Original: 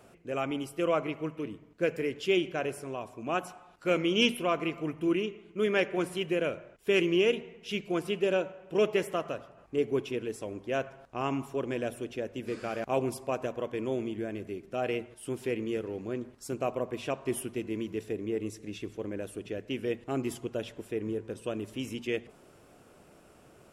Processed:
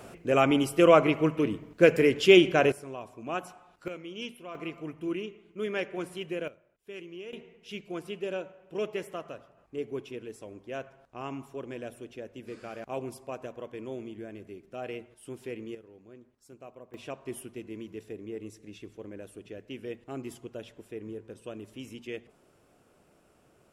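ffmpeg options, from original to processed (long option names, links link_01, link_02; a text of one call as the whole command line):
ffmpeg -i in.wav -af "asetnsamples=nb_out_samples=441:pad=0,asendcmd='2.72 volume volume -2.5dB;3.88 volume volume -14dB;4.55 volume volume -5dB;6.48 volume volume -17.5dB;7.33 volume volume -6.5dB;15.75 volume volume -16.5dB;16.94 volume volume -6.5dB',volume=9.5dB" out.wav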